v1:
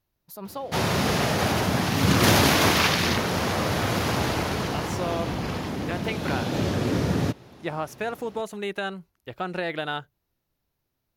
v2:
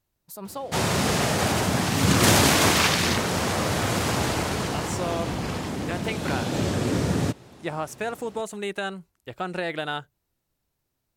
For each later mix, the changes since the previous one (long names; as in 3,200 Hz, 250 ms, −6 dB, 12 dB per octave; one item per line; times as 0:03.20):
master: add parametric band 8,100 Hz +11 dB 0.45 octaves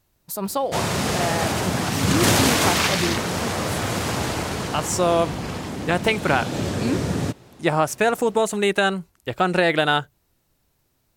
speech +10.5 dB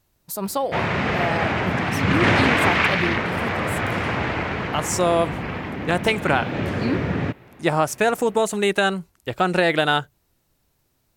background: add low-pass with resonance 2,200 Hz, resonance Q 2